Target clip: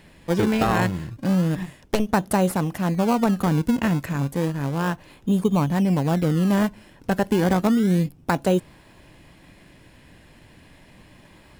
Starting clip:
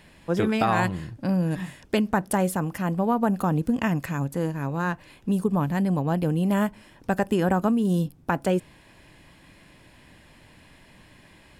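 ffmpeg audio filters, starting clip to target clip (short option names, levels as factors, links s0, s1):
-filter_complex "[0:a]asettb=1/sr,asplit=3[s0][s1][s2];[s0]atrim=end=1.634[s3];[s1]atrim=start=1.63:end=2.09,asetpts=PTS-STARTPTS,afade=t=in:d=0.004:c=qsin,afade=t=out:st=0.456:d=0.004:c=qsin,aeval=exprs='0.355*(cos(1*acos(clip(val(0)/0.355,-1,1)))-cos(1*PI/2))+0.0562*(cos(3*acos(clip(val(0)/0.355,-1,1)))-cos(3*PI/2))+0.0891*(cos(4*acos(clip(val(0)/0.355,-1,1)))-cos(4*PI/2))+0.0112*(cos(5*acos(clip(val(0)/0.355,-1,1)))-cos(5*PI/2))':c=same[s4];[s2]atrim=start=2.086[s5];[s3][s4]acrossfade=d=0.004:c1=hsin:c2=qsin[s6];[s6][s5]acrossfade=d=0.004:c1=qsin:c2=hsin,asplit=2[s7][s8];[s8]acrusher=samples=25:mix=1:aa=0.000001:lfo=1:lforange=25:lforate=0.32,volume=0.501[s9];[s7][s9]amix=inputs=2:normalize=0"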